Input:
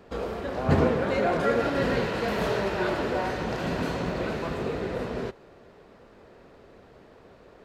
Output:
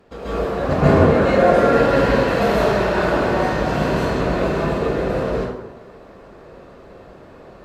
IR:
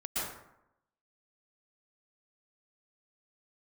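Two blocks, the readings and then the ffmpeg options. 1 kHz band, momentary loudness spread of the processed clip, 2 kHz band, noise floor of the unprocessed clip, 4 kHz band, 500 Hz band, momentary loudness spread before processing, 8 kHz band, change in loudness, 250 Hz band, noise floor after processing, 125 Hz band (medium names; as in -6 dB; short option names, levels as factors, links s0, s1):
+10.0 dB, 10 LU, +8.5 dB, -53 dBFS, +6.5 dB, +10.5 dB, 8 LU, +7.0 dB, +9.5 dB, +9.5 dB, -43 dBFS, +10.0 dB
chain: -filter_complex "[1:a]atrim=start_sample=2205,asetrate=37485,aresample=44100[s0];[0:a][s0]afir=irnorm=-1:irlink=0,volume=1.33"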